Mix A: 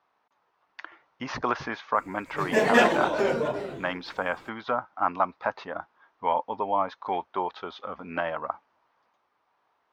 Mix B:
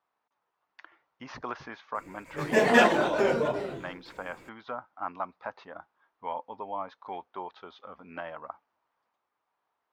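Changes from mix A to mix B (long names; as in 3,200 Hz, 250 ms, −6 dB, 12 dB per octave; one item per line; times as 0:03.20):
speech −10.0 dB
reverb: on, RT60 0.35 s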